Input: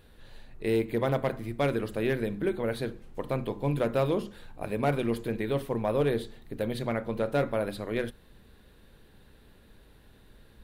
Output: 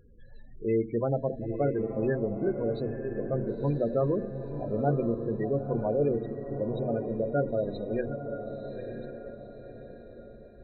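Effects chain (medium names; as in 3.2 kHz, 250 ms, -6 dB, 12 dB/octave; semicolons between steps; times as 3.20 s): backward echo that repeats 646 ms, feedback 44%, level -12 dB; loudest bins only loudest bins 16; echo that smears into a reverb 978 ms, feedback 43%, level -8 dB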